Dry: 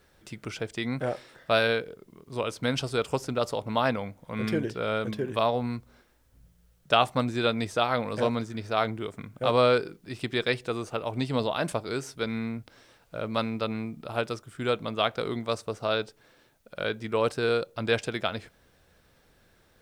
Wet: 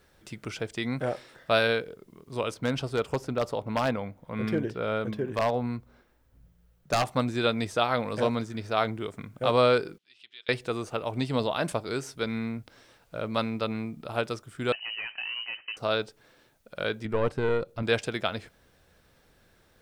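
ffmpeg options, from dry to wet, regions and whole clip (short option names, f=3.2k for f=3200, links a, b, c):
-filter_complex "[0:a]asettb=1/sr,asplit=3[a][b][c];[a]atrim=end=2.544[d];[b]atrim=start=2.54:end=7.07,asetpts=PTS-STARTPTS,afade=t=in:d=0.004:c=qsin,afade=t=out:st=4.526:d=0.004:c=qsin,equalizer=f=8.3k:w=0.35:g=-8,aeval=exprs='0.126*(abs(mod(val(0)/0.126+3,4)-2)-1)':c=same[e];[c]atrim=start=7.066[f];[d][e]acrossfade=d=0.004:c1=hsin:c2=qsin[g];[g][f]acrossfade=d=0.004:c1=qsin:c2=hsin,asettb=1/sr,asplit=3[h][i][j];[h]atrim=end=9.984[k];[i]atrim=start=9.98:end=10.49,asetpts=PTS-STARTPTS,afade=t=in:d=0.004:c=qsin,afade=t=out:st=0.506:d=0.004:c=qsin,acompressor=threshold=-56dB:ratio=1.5:attack=3.2:release=140:knee=1:detection=peak,bandpass=f=3.2k:t=q:w=2.6[l];[j]atrim=start=10.486[m];[k][l]acrossfade=d=0.004:c1=hsin:c2=qsin[n];[n][m]acrossfade=d=0.004:c1=qsin:c2=hsin,asettb=1/sr,asplit=3[o][p][q];[o]atrim=end=14.724[r];[p]atrim=start=14.72:end=15.77,asetpts=PTS-STARTPTS,afade=t=in:d=0.004:c=qsin,afade=t=out:st=1.046:d=0.004:c=qsin,acompressor=threshold=-27dB:ratio=4:attack=3.2:release=140:knee=1:detection=peak,asoftclip=type=hard:threshold=-31dB,lowpass=f=2.6k:t=q:w=0.5098,lowpass=f=2.6k:t=q:w=0.6013,lowpass=f=2.6k:t=q:w=0.9,lowpass=f=2.6k:t=q:w=2.563,afreqshift=-3100[s];[q]atrim=start=15.766[t];[r][s]acrossfade=d=0.004:c1=hsin:c2=qsin[u];[u][t]acrossfade=d=0.004:c1=qsin:c2=hsin,asettb=1/sr,asplit=3[v][w][x];[v]atrim=end=17.054[y];[w]atrim=start=17.05:end=17.83,asetpts=PTS-STARTPTS,afade=t=in:d=0.004:c=qsin,afade=t=out:st=0.776:d=0.004:c=qsin,aeval=exprs='(tanh(7.08*val(0)+0.6)-tanh(0.6))/7.08':c=same,acrossover=split=2900[z][aa];[aa]acompressor=threshold=-54dB:ratio=4:attack=1:release=60[ab];[z][ab]amix=inputs=2:normalize=0,lowshelf=f=320:g=8[ac];[x]atrim=start=17.826[ad];[y][ac]acrossfade=d=0.004:c1=hsin:c2=qsin[ae];[ae][ad]acrossfade=d=0.004:c1=qsin:c2=hsin"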